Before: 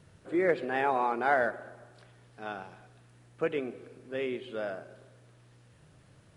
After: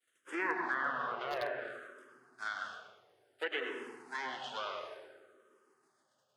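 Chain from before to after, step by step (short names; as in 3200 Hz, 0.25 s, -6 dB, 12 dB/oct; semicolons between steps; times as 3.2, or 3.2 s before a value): minimum comb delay 0.62 ms; expander -47 dBFS; HPF 470 Hz 12 dB/oct; tilt shelf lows -6.5 dB, about 1200 Hz; in parallel at -3 dB: compressor 6:1, threshold -41 dBFS, peak gain reduction 17.5 dB; on the sum: treble ducked by the level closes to 1300 Hz, closed at -26.5 dBFS; darkening echo 0.164 s, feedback 85%, low-pass 1500 Hz, level -21 dB; on a send at -2.5 dB: reverb RT60 1.1 s, pre-delay 96 ms; on the sum: wavefolder -20.5 dBFS; endless phaser -0.57 Hz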